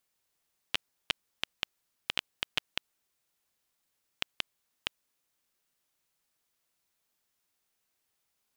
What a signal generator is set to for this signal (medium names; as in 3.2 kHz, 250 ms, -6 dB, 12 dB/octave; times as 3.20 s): random clicks 3.9 per s -9.5 dBFS 4.21 s